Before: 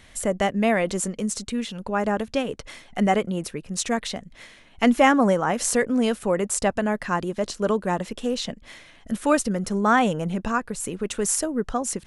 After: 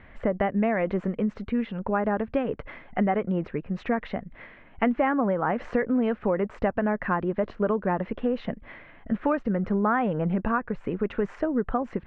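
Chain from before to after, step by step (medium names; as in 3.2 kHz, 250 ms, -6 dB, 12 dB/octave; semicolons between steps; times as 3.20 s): low-pass 2.1 kHz 24 dB/octave; compression 6:1, threshold -23 dBFS, peak gain reduction 10.5 dB; trim +2.5 dB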